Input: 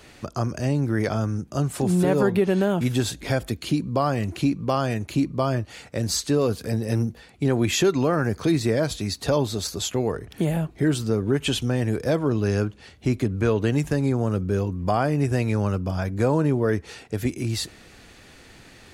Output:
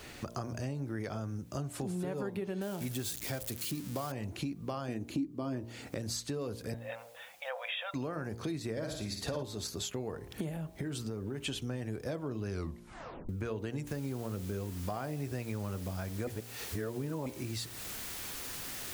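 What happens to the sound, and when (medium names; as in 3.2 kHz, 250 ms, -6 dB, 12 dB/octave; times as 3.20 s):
2.61–4.12 s: zero-crossing glitches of -19 dBFS
4.88–5.96 s: peaking EQ 290 Hz +13 dB
6.74–7.94 s: brick-wall FIR band-pass 480–3800 Hz
8.71–9.43 s: flutter echo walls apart 9.3 m, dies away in 0.55 s
10.49–11.38 s: compression, threshold -22 dBFS
12.49 s: tape stop 0.80 s
13.87 s: noise floor step -62 dB -41 dB
16.27–17.26 s: reverse
whole clip: de-hum 58.31 Hz, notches 18; compression 4:1, threshold -37 dBFS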